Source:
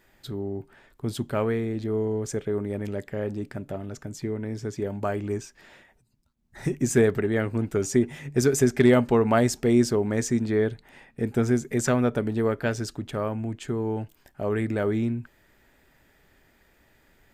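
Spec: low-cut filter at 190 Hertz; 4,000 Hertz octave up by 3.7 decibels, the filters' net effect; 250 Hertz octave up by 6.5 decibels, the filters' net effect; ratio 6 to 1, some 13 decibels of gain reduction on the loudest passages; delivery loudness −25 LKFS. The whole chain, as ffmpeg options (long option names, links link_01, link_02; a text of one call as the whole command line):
ffmpeg -i in.wav -af "highpass=190,equalizer=frequency=250:width_type=o:gain=9,equalizer=frequency=4000:width_type=o:gain=5,acompressor=threshold=-23dB:ratio=6,volume=4dB" out.wav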